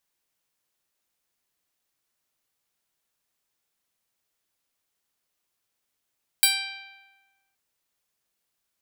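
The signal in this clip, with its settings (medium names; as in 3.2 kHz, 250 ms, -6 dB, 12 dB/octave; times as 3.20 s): plucked string G5, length 1.12 s, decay 1.36 s, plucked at 0.12, bright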